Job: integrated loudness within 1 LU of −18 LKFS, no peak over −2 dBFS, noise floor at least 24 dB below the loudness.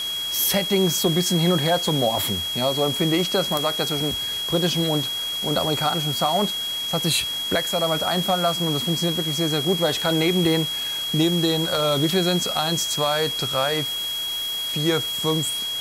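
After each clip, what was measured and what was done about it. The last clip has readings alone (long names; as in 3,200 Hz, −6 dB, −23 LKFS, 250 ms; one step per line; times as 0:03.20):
interfering tone 3,300 Hz; level of the tone −25 dBFS; background noise floor −28 dBFS; target noise floor −46 dBFS; integrated loudness −21.5 LKFS; sample peak −8.5 dBFS; target loudness −18.0 LKFS
→ notch filter 3,300 Hz, Q 30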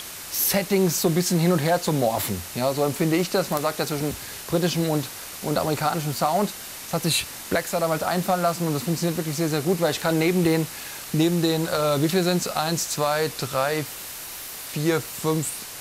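interfering tone none found; background noise floor −37 dBFS; target noise floor −48 dBFS
→ broadband denoise 11 dB, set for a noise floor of −37 dBFS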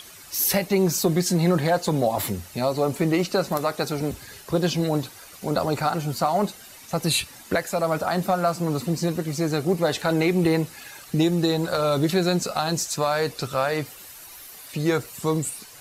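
background noise floor −45 dBFS; target noise floor −48 dBFS
→ broadband denoise 6 dB, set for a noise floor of −45 dBFS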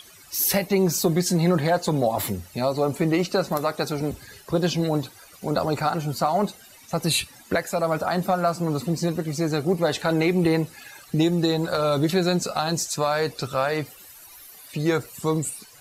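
background noise floor −49 dBFS; integrated loudness −24.0 LKFS; sample peak −10.5 dBFS; target loudness −18.0 LKFS
→ level +6 dB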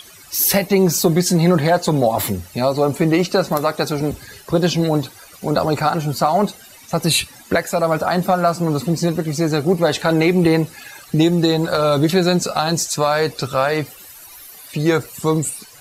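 integrated loudness −18.0 LKFS; sample peak −4.5 dBFS; background noise floor −43 dBFS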